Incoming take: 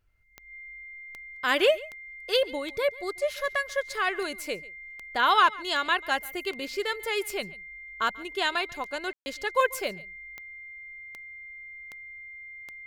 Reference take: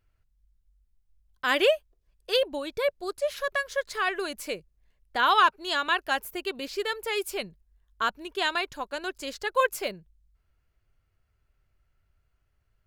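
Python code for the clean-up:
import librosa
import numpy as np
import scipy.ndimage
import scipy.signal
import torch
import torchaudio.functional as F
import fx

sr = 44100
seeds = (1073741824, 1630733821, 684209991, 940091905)

y = fx.fix_declick_ar(x, sr, threshold=10.0)
y = fx.notch(y, sr, hz=2100.0, q=30.0)
y = fx.fix_ambience(y, sr, seeds[0], print_start_s=0.0, print_end_s=0.5, start_s=9.13, end_s=9.26)
y = fx.fix_echo_inverse(y, sr, delay_ms=140, level_db=-21.5)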